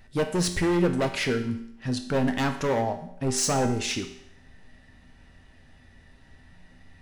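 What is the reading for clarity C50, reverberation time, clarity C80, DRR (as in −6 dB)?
9.5 dB, 0.75 s, 12.5 dB, 5.0 dB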